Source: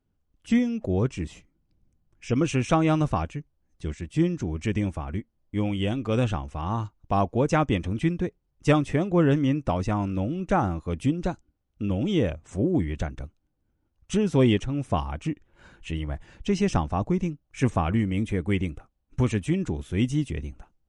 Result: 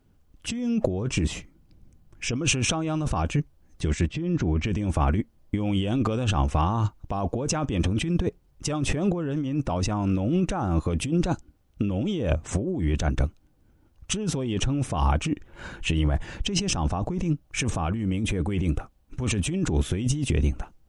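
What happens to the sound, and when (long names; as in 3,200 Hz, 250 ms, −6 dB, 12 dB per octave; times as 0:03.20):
0:04.07–0:04.67: high-frequency loss of the air 170 metres
whole clip: dynamic equaliser 2,000 Hz, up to −7 dB, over −52 dBFS, Q 4.1; brickwall limiter −16 dBFS; compressor whose output falls as the input rises −32 dBFS, ratio −1; level +7.5 dB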